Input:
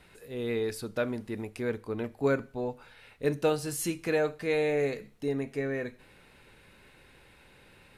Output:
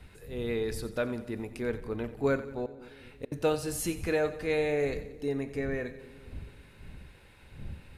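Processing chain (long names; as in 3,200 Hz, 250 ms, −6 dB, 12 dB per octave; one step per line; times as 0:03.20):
wind on the microphone 100 Hz −45 dBFS
0:02.65–0:03.32: gate with flip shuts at −25 dBFS, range −38 dB
echo with a time of its own for lows and highs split 440 Hz, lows 223 ms, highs 90 ms, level −14.5 dB
level −1 dB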